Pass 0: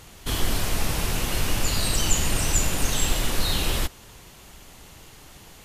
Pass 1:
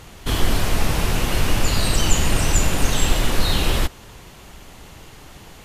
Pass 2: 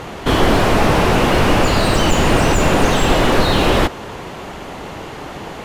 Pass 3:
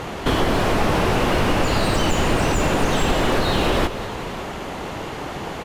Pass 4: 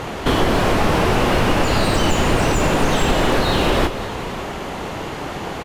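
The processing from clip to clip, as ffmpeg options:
-af "highshelf=f=4.1k:g=-7,volume=6dB"
-filter_complex "[0:a]asplit=2[a][b];[b]highpass=f=720:p=1,volume=27dB,asoftclip=type=tanh:threshold=-1dB[c];[a][c]amix=inputs=2:normalize=0,lowpass=f=2.6k:p=1,volume=-6dB,tiltshelf=f=970:g=6.5,volume=-2.5dB"
-af "acompressor=threshold=-18dB:ratio=2.5,aecho=1:1:192|558:0.224|0.141"
-filter_complex "[0:a]asplit=2[a][b];[b]adelay=32,volume=-11.5dB[c];[a][c]amix=inputs=2:normalize=0,volume=2dB"

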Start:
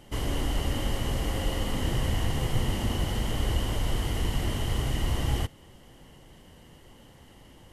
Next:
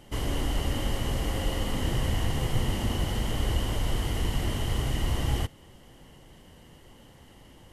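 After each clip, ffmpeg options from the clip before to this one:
-af anull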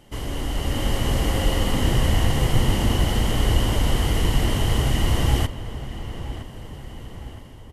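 -filter_complex "[0:a]dynaudnorm=f=290:g=5:m=7.5dB,asplit=2[a][b];[b]adelay=965,lowpass=f=2.9k:p=1,volume=-12.5dB,asplit=2[c][d];[d]adelay=965,lowpass=f=2.9k:p=1,volume=0.52,asplit=2[e][f];[f]adelay=965,lowpass=f=2.9k:p=1,volume=0.52,asplit=2[g][h];[h]adelay=965,lowpass=f=2.9k:p=1,volume=0.52,asplit=2[i][j];[j]adelay=965,lowpass=f=2.9k:p=1,volume=0.52[k];[a][c][e][g][i][k]amix=inputs=6:normalize=0"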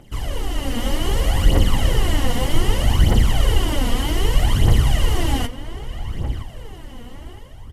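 -af "aphaser=in_gain=1:out_gain=1:delay=4.3:decay=0.64:speed=0.64:type=triangular,volume=-1dB"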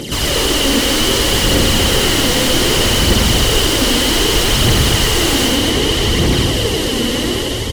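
-filter_complex "[0:a]firequalizer=gain_entry='entry(440,0);entry(720,-15);entry(4000,9)':delay=0.05:min_phase=1,asplit=2[a][b];[b]highpass=f=720:p=1,volume=42dB,asoftclip=type=tanh:threshold=-1.5dB[c];[a][c]amix=inputs=2:normalize=0,lowpass=f=1.8k:p=1,volume=-6dB,asplit=2[d][e];[e]aecho=0:1:90.38|239.1:0.708|0.631[f];[d][f]amix=inputs=2:normalize=0,volume=-2.5dB"

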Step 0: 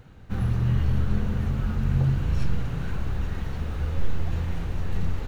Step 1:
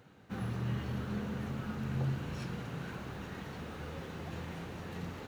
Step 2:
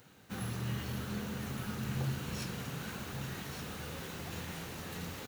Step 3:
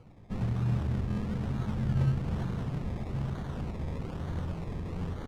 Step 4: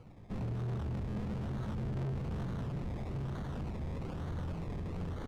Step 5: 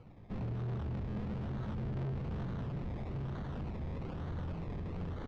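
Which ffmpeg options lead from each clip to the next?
-af "highpass=180,volume=-4.5dB"
-af "aecho=1:1:1170:0.376,crystalizer=i=4:c=0,volume=-2dB"
-af "acrusher=samples=24:mix=1:aa=0.000001:lfo=1:lforange=14.4:lforate=1.1,aemphasis=mode=reproduction:type=bsi"
-af "asoftclip=type=tanh:threshold=-33.5dB"
-af "lowpass=4.5k,volume=-1dB"

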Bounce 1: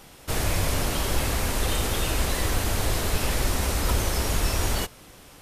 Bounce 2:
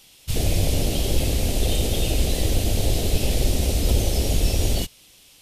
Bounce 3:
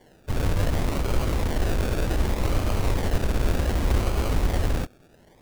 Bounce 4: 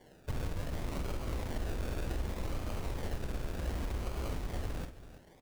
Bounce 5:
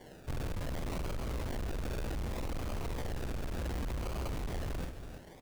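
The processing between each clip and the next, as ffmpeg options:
-af "afwtdn=0.0562,highshelf=f=2.1k:t=q:w=1.5:g=11.5,volume=5dB"
-af "acrusher=samples=34:mix=1:aa=0.000001:lfo=1:lforange=20.4:lforate=0.66,volume=-2.5dB"
-filter_complex "[0:a]acompressor=threshold=-28dB:ratio=10,asplit=2[a][b];[b]aecho=0:1:47|330:0.335|0.188[c];[a][c]amix=inputs=2:normalize=0,volume=-4.5dB"
-af "asoftclip=type=tanh:threshold=-39.5dB,volume=6.5dB"

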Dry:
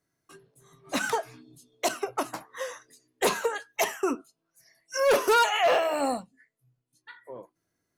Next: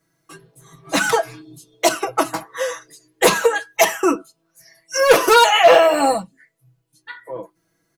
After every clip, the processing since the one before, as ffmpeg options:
-af "aecho=1:1:6.1:0.89,volume=8.5dB"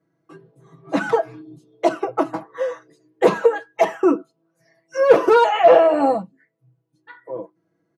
-af "bandpass=f=320:t=q:w=0.59:csg=0,volume=2dB"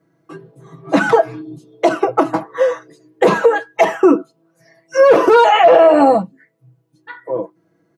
-af "alimiter=level_in=10dB:limit=-1dB:release=50:level=0:latency=1,volume=-1dB"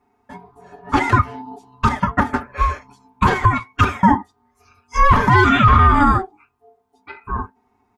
-af "aeval=exprs='val(0)*sin(2*PI*570*n/s)':c=same"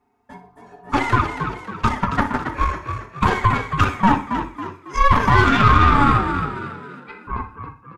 -filter_complex "[0:a]asplit=2[a][b];[b]aecho=0:1:60|120|180|240:0.251|0.0955|0.0363|0.0138[c];[a][c]amix=inputs=2:normalize=0,aeval=exprs='0.891*(cos(1*acos(clip(val(0)/0.891,-1,1)))-cos(1*PI/2))+0.1*(cos(4*acos(clip(val(0)/0.891,-1,1)))-cos(4*PI/2))+0.02*(cos(8*acos(clip(val(0)/0.891,-1,1)))-cos(8*PI/2))':c=same,asplit=2[d][e];[e]asplit=5[f][g][h][i][j];[f]adelay=275,afreqshift=46,volume=-8dB[k];[g]adelay=550,afreqshift=92,volume=-15.3dB[l];[h]adelay=825,afreqshift=138,volume=-22.7dB[m];[i]adelay=1100,afreqshift=184,volume=-30dB[n];[j]adelay=1375,afreqshift=230,volume=-37.3dB[o];[k][l][m][n][o]amix=inputs=5:normalize=0[p];[d][p]amix=inputs=2:normalize=0,volume=-3dB"

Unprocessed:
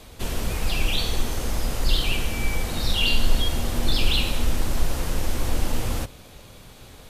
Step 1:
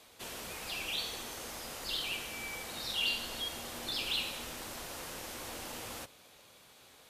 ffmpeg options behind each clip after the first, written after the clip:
-af "highpass=f=660:p=1,volume=-8.5dB"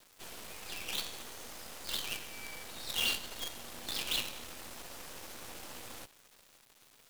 -af "acrusher=bits=6:dc=4:mix=0:aa=0.000001"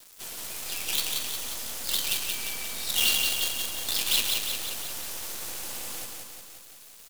-af "highshelf=f=4.1k:g=11,aecho=1:1:178|356|534|712|890|1068|1246|1424:0.668|0.394|0.233|0.137|0.081|0.0478|0.0282|0.0166,volume=2.5dB"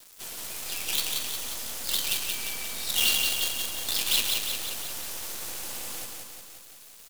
-af anull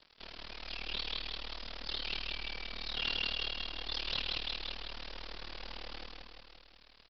-af "aresample=11025,asoftclip=type=hard:threshold=-27dB,aresample=44100,tremolo=f=38:d=0.947,volume=-1dB"

